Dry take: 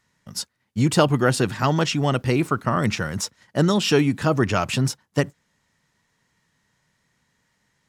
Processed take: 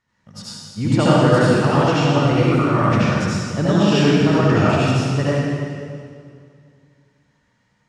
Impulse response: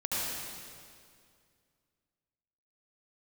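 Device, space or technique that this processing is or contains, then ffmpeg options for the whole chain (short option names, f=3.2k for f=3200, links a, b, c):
swimming-pool hall: -filter_complex "[1:a]atrim=start_sample=2205[a];[0:a][a]afir=irnorm=-1:irlink=0,lowpass=7.9k,highshelf=f=4.3k:g=-7.5,volume=-2.5dB"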